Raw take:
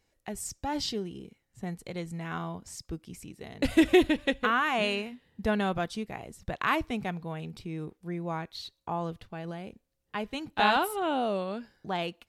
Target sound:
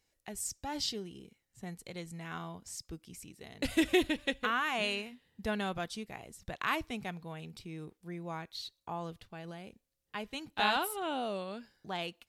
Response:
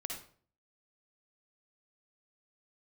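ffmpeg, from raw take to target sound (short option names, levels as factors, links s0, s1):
-af "highshelf=f=2300:g=8,volume=0.422"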